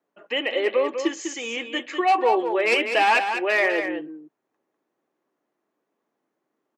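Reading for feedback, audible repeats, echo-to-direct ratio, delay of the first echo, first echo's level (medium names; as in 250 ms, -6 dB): no regular repeats, 1, -7.5 dB, 199 ms, -7.5 dB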